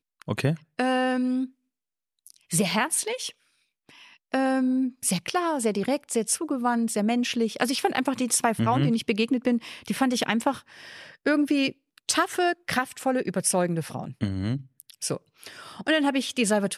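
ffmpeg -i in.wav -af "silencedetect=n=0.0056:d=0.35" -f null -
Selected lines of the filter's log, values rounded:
silence_start: 1.49
silence_end: 2.27 | silence_duration: 0.78
silence_start: 3.31
silence_end: 3.89 | silence_duration: 0.58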